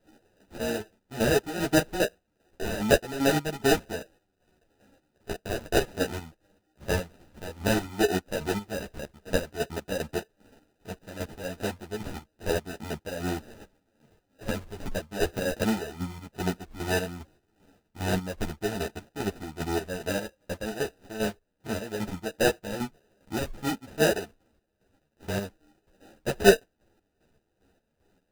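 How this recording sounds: chopped level 2.5 Hz, depth 65%, duty 45%; aliases and images of a low sample rate 1100 Hz, jitter 0%; a shimmering, thickened sound

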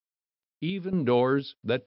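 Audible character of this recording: random-step tremolo 4.3 Hz, depth 75%; a quantiser's noise floor 12-bit, dither none; MP3

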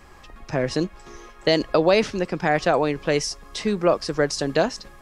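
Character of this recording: noise floor -46 dBFS; spectral tilt -4.5 dB/oct

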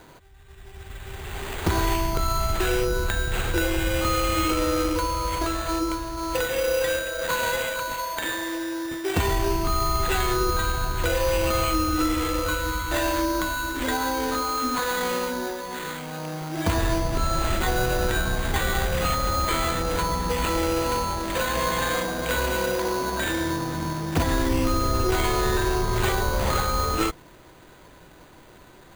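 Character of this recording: aliases and images of a low sample rate 5400 Hz, jitter 0%

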